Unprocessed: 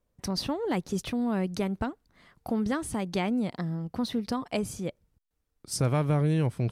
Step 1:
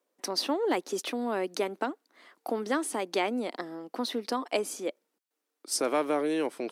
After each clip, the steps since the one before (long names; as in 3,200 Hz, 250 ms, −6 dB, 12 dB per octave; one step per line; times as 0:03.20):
Butterworth high-pass 280 Hz 36 dB per octave
level +3 dB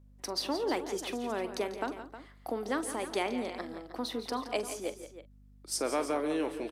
on a send: multi-tap delay 143/169/313 ms −17/−12/−13 dB
on the sum: mains hum 50 Hz, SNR 22 dB
double-tracking delay 44 ms −14 dB
level −4 dB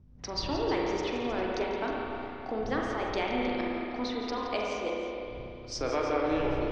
wind on the microphone 100 Hz −47 dBFS
elliptic low-pass filter 5,900 Hz, stop band 70 dB
spring reverb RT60 2.9 s, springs 32/58 ms, chirp 55 ms, DRR −2.5 dB